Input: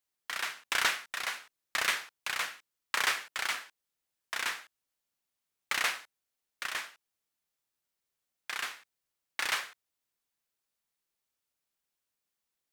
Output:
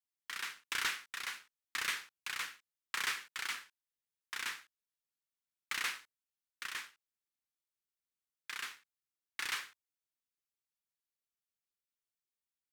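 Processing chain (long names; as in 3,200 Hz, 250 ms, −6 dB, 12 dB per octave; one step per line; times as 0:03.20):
parametric band 650 Hz −14 dB 0.69 octaves
leveller curve on the samples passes 1
level −9 dB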